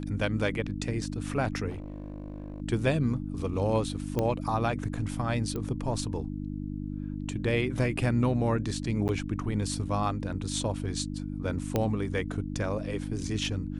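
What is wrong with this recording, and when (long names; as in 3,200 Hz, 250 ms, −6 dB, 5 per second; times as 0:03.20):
mains hum 50 Hz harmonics 6 −35 dBFS
0:01.69–0:02.62: clipping −34 dBFS
0:04.19: click −15 dBFS
0:05.56: click −22 dBFS
0:09.08–0:09.09: drop-out 9.6 ms
0:11.76: click −13 dBFS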